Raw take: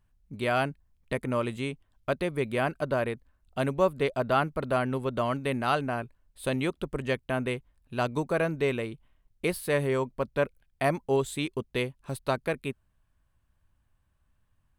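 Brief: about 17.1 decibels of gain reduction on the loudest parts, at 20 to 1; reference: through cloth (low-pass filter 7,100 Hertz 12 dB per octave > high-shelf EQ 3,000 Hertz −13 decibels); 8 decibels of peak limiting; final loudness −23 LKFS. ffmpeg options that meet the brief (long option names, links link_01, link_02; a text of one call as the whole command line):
ffmpeg -i in.wav -af "acompressor=threshold=-37dB:ratio=20,alimiter=level_in=8dB:limit=-24dB:level=0:latency=1,volume=-8dB,lowpass=7100,highshelf=frequency=3000:gain=-13,volume=23dB" out.wav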